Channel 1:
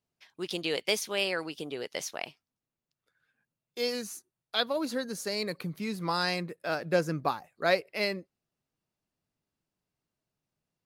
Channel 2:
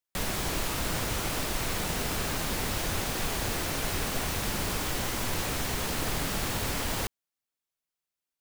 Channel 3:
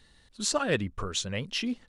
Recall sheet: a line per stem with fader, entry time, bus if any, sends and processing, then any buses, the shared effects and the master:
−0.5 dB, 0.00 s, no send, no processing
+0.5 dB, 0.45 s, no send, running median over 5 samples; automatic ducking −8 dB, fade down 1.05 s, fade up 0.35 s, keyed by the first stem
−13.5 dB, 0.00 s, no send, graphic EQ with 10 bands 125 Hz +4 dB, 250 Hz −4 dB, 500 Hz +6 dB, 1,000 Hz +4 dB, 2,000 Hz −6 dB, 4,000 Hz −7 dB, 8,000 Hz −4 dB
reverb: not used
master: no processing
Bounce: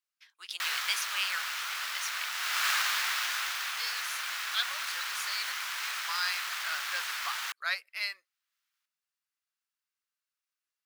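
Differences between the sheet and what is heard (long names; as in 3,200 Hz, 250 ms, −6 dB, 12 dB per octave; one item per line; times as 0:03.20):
stem 2 +0.5 dB → +10.5 dB
stem 3: muted
master: extra Chebyshev high-pass filter 1,300 Hz, order 3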